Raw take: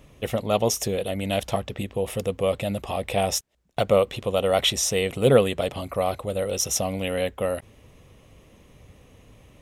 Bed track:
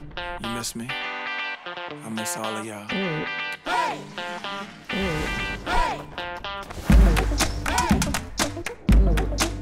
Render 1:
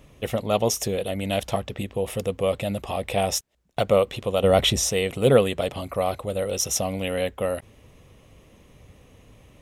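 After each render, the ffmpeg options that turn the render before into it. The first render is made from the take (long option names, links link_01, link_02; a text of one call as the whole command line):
ffmpeg -i in.wav -filter_complex "[0:a]asettb=1/sr,asplit=3[link_01][link_02][link_03];[link_01]atrim=end=4.434[link_04];[link_02]atrim=start=4.43:end=4.9,asetpts=PTS-STARTPTS,afade=type=in:duration=0.004:curve=qsin,afade=type=out:start_time=0.466:duration=0.004:curve=qsin,lowshelf=frequency=400:gain=10[link_05];[link_03]atrim=start=4.896[link_06];[link_04][link_05]acrossfade=duration=0.004:curve1=hsin:curve2=qsin[link_07];[link_07][link_06]acrossfade=duration=0.004:curve1=qsin:curve2=hsin" out.wav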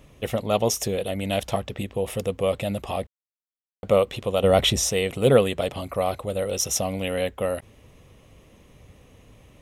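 ffmpeg -i in.wav -filter_complex "[0:a]asplit=3[link_01][link_02][link_03];[link_01]atrim=end=3.07,asetpts=PTS-STARTPTS,afade=type=out:start_time=3.066:duration=0.004:curve=hsin[link_04];[link_02]atrim=start=3.07:end=3.83,asetpts=PTS-STARTPTS,volume=0[link_05];[link_03]atrim=start=3.83,asetpts=PTS-STARTPTS,afade=type=in:duration=0.004:curve=hsin[link_06];[link_04][link_05][link_06]concat=n=3:v=0:a=1" out.wav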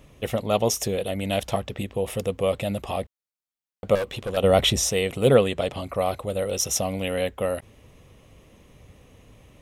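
ffmpeg -i in.wav -filter_complex "[0:a]asettb=1/sr,asplit=3[link_01][link_02][link_03];[link_01]atrim=end=3.954[link_04];[link_02]atrim=start=3.95:end=4.37,asetpts=PTS-STARTPTS,afade=type=in:duration=0.004:curve=qsin,afade=type=out:start_time=0.416:duration=0.004:curve=qsin,volume=24dB,asoftclip=hard,volume=-24dB[link_05];[link_03]atrim=start=4.366[link_06];[link_04][link_05]acrossfade=duration=0.004:curve1=hsin:curve2=qsin[link_07];[link_07][link_06]acrossfade=duration=0.004:curve1=qsin:curve2=hsin,asettb=1/sr,asplit=3[link_08][link_09][link_10];[link_08]atrim=end=5.344[link_11];[link_09]atrim=start=5.34:end=5.99,asetpts=PTS-STARTPTS,afade=type=in:duration=0.004:curve=qsin,afade=type=out:start_time=0.646:duration=0.004:curve=qsin,acrossover=split=9600[link_12][link_13];[link_13]acompressor=threshold=-60dB:ratio=4:attack=1:release=60[link_14];[link_12][link_14]amix=inputs=2:normalize=0[link_15];[link_10]atrim=start=5.986[link_16];[link_11][link_15]acrossfade=duration=0.004:curve1=hsin:curve2=qsin[link_17];[link_17][link_16]acrossfade=duration=0.004:curve1=qsin:curve2=hsin" out.wav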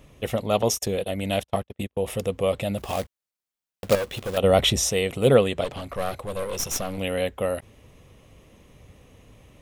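ffmpeg -i in.wav -filter_complex "[0:a]asettb=1/sr,asplit=3[link_01][link_02][link_03];[link_01]atrim=end=0.624[link_04];[link_02]atrim=start=0.62:end=2.03,asetpts=PTS-STARTPTS,afade=type=in:duration=0.004:curve=qsin,afade=type=out:start_time=1.406:duration=0.004:curve=qsin,agate=range=-38dB:threshold=-31dB:ratio=16:release=100:detection=peak[link_05];[link_03]atrim=start=2.026[link_06];[link_04][link_05]acrossfade=duration=0.004:curve1=hsin:curve2=qsin[link_07];[link_07][link_06]acrossfade=duration=0.004:curve1=qsin:curve2=hsin,asettb=1/sr,asplit=3[link_08][link_09][link_10];[link_08]atrim=end=2.784[link_11];[link_09]atrim=start=2.78:end=4.38,asetpts=PTS-STARTPTS,afade=type=in:duration=0.004:curve=qsin,afade=type=out:start_time=1.596:duration=0.004:curve=qsin,acrusher=bits=2:mode=log:mix=0:aa=0.000001[link_12];[link_10]atrim=start=4.376[link_13];[link_11][link_12]acrossfade=duration=0.004:curve1=hsin:curve2=qsin[link_14];[link_14][link_13]acrossfade=duration=0.004:curve1=qsin:curve2=hsin,asettb=1/sr,asplit=3[link_15][link_16][link_17];[link_15]atrim=end=5.644[link_18];[link_16]atrim=start=5.64:end=6.98,asetpts=PTS-STARTPTS,afade=type=in:duration=0.004:curve=qsin,afade=type=out:start_time=1.336:duration=0.004:curve=qsin,aeval=exprs='clip(val(0),-1,0.0224)':channel_layout=same[link_19];[link_17]atrim=start=6.976[link_20];[link_18][link_19]acrossfade=duration=0.004:curve1=hsin:curve2=qsin[link_21];[link_21][link_20]acrossfade=duration=0.004:curve1=qsin:curve2=hsin" out.wav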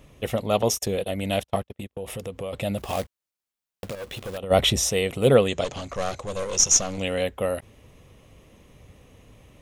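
ffmpeg -i in.wav -filter_complex "[0:a]asplit=3[link_01][link_02][link_03];[link_01]afade=type=out:start_time=1.78:duration=0.02[link_04];[link_02]acompressor=threshold=-31dB:ratio=3:attack=3.2:release=140:knee=1:detection=peak,afade=type=in:start_time=1.78:duration=0.02,afade=type=out:start_time=2.52:duration=0.02[link_05];[link_03]afade=type=in:start_time=2.52:duration=0.02[link_06];[link_04][link_05][link_06]amix=inputs=3:normalize=0,asplit=3[link_07][link_08][link_09];[link_07]afade=type=out:start_time=3.87:duration=0.02[link_10];[link_08]acompressor=threshold=-30dB:ratio=8:attack=3.2:release=140:knee=1:detection=peak,afade=type=in:start_time=3.87:duration=0.02,afade=type=out:start_time=4.5:duration=0.02[link_11];[link_09]afade=type=in:start_time=4.5:duration=0.02[link_12];[link_10][link_11][link_12]amix=inputs=3:normalize=0,asettb=1/sr,asplit=3[link_13][link_14][link_15];[link_13]atrim=end=5.484[link_16];[link_14]atrim=start=5.48:end=7.23,asetpts=PTS-STARTPTS,afade=type=in:duration=0.004:curve=qsin,afade=type=out:start_time=1.746:duration=0.004:curve=qsin,lowpass=frequency=6600:width_type=q:width=7[link_17];[link_15]atrim=start=7.226[link_18];[link_16][link_17]acrossfade=duration=0.004:curve1=hsin:curve2=qsin[link_19];[link_19][link_18]acrossfade=duration=0.004:curve1=qsin:curve2=hsin" out.wav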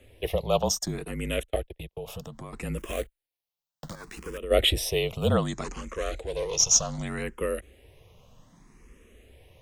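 ffmpeg -i in.wav -filter_complex "[0:a]afreqshift=-40,asplit=2[link_01][link_02];[link_02]afreqshift=0.65[link_03];[link_01][link_03]amix=inputs=2:normalize=1" out.wav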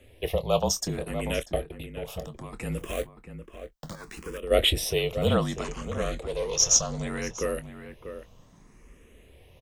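ffmpeg -i in.wav -filter_complex "[0:a]asplit=2[link_01][link_02];[link_02]adelay=25,volume=-13.5dB[link_03];[link_01][link_03]amix=inputs=2:normalize=0,asplit=2[link_04][link_05];[link_05]adelay=641.4,volume=-10dB,highshelf=frequency=4000:gain=-14.4[link_06];[link_04][link_06]amix=inputs=2:normalize=0" out.wav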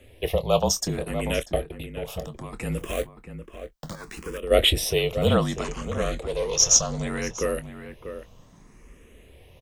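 ffmpeg -i in.wav -af "volume=3dB" out.wav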